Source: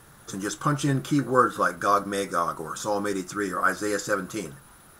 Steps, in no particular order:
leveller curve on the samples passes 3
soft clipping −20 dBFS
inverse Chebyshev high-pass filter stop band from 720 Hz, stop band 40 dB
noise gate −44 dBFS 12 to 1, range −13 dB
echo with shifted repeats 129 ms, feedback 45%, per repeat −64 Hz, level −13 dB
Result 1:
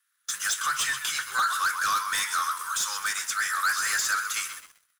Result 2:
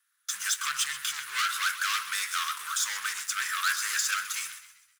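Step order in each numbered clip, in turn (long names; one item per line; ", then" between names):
noise gate, then inverse Chebyshev high-pass filter, then soft clipping, then echo with shifted repeats, then leveller curve on the samples
noise gate, then leveller curve on the samples, then soft clipping, then echo with shifted repeats, then inverse Chebyshev high-pass filter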